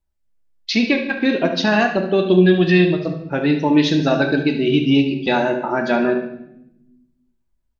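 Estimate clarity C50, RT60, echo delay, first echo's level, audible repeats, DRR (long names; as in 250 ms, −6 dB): 6.5 dB, 0.80 s, 72 ms, −11.0 dB, 2, 4.0 dB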